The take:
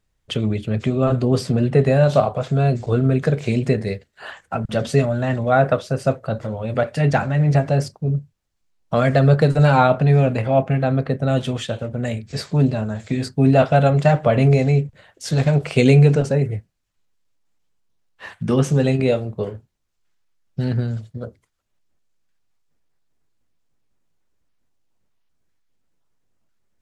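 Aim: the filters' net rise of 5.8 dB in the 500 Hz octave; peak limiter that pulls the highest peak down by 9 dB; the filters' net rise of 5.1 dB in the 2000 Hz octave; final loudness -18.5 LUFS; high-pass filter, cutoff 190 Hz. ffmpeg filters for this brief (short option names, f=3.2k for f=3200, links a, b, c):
-af "highpass=190,equalizer=f=500:t=o:g=7,equalizer=f=2k:t=o:g=6.5,volume=1dB,alimiter=limit=-6.5dB:level=0:latency=1"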